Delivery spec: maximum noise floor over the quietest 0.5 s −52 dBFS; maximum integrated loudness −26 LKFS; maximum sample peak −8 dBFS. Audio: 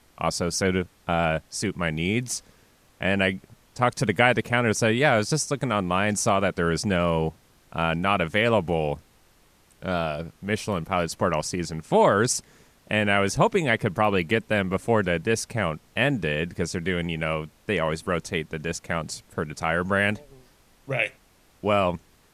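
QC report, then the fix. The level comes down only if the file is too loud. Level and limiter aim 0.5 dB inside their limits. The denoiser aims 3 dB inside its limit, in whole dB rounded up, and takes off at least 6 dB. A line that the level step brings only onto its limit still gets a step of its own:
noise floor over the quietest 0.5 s −59 dBFS: in spec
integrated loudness −25.0 LKFS: out of spec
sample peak −4.0 dBFS: out of spec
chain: level −1.5 dB
brickwall limiter −8.5 dBFS

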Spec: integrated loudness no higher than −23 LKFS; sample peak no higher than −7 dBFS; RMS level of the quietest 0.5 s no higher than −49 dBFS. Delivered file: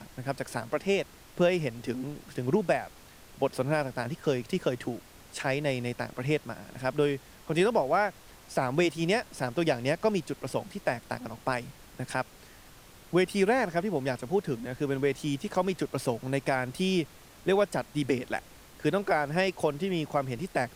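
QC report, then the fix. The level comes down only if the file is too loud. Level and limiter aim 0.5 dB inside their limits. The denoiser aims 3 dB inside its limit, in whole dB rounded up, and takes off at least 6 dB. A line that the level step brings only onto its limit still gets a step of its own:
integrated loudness −30.0 LKFS: in spec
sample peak −13.5 dBFS: in spec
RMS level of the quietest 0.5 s −52 dBFS: in spec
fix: no processing needed

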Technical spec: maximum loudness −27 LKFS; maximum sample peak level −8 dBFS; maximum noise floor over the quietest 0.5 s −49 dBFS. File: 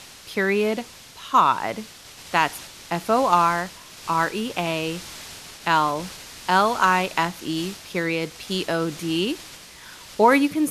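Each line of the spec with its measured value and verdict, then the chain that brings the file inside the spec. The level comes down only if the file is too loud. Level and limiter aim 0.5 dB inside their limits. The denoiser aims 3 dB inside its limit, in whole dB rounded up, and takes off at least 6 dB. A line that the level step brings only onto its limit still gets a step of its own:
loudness −22.5 LKFS: out of spec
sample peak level −4.5 dBFS: out of spec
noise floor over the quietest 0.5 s −43 dBFS: out of spec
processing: broadband denoise 6 dB, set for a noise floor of −43 dBFS
level −5 dB

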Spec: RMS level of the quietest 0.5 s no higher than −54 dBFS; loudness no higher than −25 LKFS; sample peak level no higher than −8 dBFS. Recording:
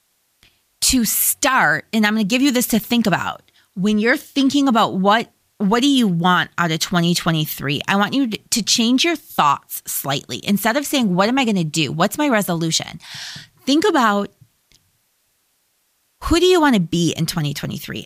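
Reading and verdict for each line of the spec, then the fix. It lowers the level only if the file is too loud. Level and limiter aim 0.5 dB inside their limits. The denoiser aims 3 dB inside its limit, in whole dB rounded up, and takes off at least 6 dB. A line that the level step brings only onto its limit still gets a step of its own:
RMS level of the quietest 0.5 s −65 dBFS: in spec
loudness −17.5 LKFS: out of spec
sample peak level −4.5 dBFS: out of spec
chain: level −8 dB

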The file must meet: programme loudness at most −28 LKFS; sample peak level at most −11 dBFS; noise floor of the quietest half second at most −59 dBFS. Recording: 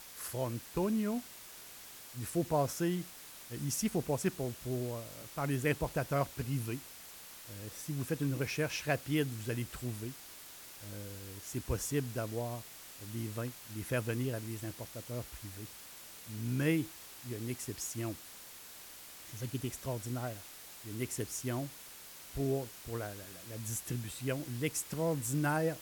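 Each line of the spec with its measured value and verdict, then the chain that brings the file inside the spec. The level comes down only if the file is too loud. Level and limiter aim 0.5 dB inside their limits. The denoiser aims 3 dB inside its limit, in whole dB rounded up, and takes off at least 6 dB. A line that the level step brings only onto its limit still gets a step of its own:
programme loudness −37.0 LKFS: in spec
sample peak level −17.0 dBFS: in spec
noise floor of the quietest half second −51 dBFS: out of spec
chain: broadband denoise 11 dB, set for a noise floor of −51 dBFS

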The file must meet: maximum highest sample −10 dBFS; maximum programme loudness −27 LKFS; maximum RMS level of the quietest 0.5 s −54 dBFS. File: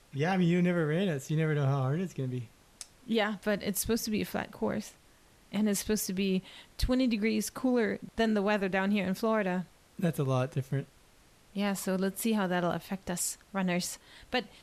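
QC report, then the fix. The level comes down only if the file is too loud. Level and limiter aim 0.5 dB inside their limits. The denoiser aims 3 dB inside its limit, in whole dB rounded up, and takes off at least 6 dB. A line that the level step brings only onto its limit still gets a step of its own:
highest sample −17.5 dBFS: in spec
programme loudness −31.0 LKFS: in spec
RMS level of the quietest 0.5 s −61 dBFS: in spec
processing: no processing needed

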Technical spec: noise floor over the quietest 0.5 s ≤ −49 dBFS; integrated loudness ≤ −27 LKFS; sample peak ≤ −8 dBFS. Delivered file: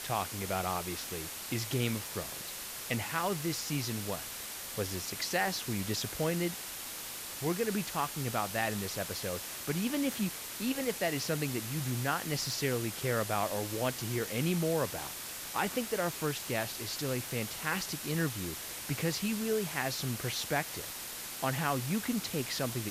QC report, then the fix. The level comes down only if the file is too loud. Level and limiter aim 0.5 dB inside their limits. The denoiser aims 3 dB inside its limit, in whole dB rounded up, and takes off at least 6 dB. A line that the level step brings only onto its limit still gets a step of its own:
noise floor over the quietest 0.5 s −42 dBFS: out of spec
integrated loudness −34.0 LKFS: in spec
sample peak −17.0 dBFS: in spec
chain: broadband denoise 10 dB, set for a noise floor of −42 dBFS

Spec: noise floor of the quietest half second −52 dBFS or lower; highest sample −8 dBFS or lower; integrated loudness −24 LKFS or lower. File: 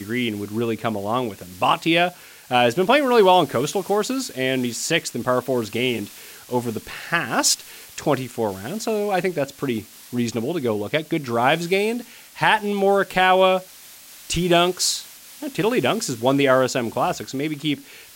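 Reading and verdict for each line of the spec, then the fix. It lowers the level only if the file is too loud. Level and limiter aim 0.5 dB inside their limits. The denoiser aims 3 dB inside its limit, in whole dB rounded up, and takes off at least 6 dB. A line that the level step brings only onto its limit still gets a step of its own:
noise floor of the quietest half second −44 dBFS: out of spec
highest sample −4.0 dBFS: out of spec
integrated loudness −21.5 LKFS: out of spec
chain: broadband denoise 8 dB, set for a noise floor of −44 dBFS
level −3 dB
brickwall limiter −8.5 dBFS

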